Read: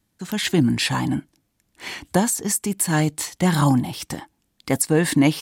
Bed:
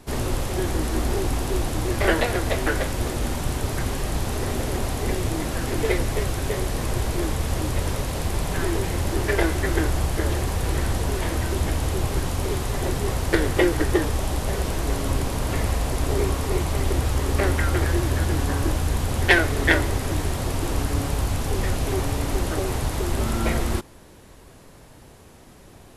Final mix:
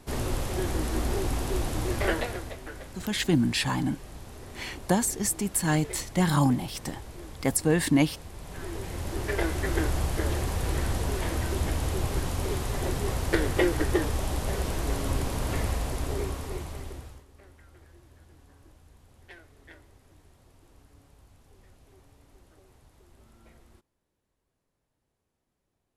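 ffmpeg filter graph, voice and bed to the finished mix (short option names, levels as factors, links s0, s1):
-filter_complex "[0:a]adelay=2750,volume=0.562[s0];[1:a]volume=2.82,afade=t=out:st=1.92:d=0.65:silence=0.211349,afade=t=in:st=8.36:d=1.47:silence=0.211349,afade=t=out:st=15.55:d=1.7:silence=0.0375837[s1];[s0][s1]amix=inputs=2:normalize=0"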